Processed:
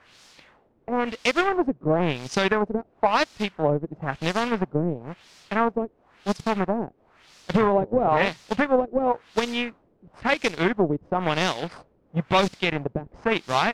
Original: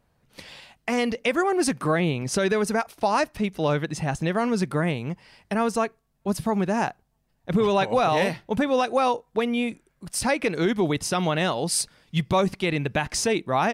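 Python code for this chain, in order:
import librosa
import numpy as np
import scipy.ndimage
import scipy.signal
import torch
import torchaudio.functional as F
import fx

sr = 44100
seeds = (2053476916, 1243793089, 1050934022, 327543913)

y = fx.quant_dither(x, sr, seeds[0], bits=6, dither='triangular')
y = fx.power_curve(y, sr, exponent=2.0)
y = fx.filter_lfo_lowpass(y, sr, shape='sine', hz=0.98, low_hz=380.0, high_hz=5500.0, q=1.4)
y = y * librosa.db_to_amplitude(5.5)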